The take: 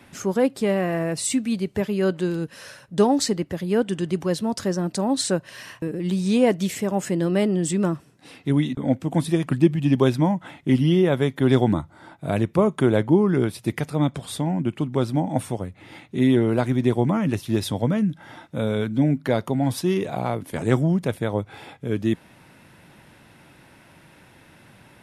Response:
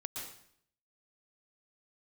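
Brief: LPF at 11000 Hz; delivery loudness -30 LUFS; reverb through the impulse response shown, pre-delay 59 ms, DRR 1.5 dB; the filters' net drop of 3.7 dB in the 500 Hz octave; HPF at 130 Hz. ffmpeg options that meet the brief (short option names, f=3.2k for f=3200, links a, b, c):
-filter_complex "[0:a]highpass=130,lowpass=11k,equalizer=f=500:t=o:g=-5,asplit=2[a][b];[1:a]atrim=start_sample=2205,adelay=59[c];[b][c]afir=irnorm=-1:irlink=0,volume=-1dB[d];[a][d]amix=inputs=2:normalize=0,volume=-7.5dB"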